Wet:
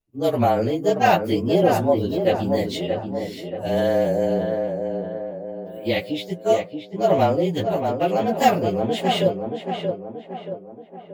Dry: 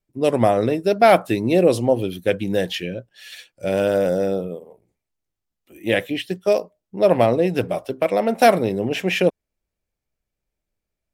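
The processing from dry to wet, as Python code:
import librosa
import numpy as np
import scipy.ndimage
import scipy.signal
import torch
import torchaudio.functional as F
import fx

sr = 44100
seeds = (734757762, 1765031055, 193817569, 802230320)

y = fx.partial_stretch(x, sr, pct=108)
y = fx.echo_tape(y, sr, ms=629, feedback_pct=55, wet_db=-4.0, lp_hz=1600.0, drive_db=5.0, wow_cents=11)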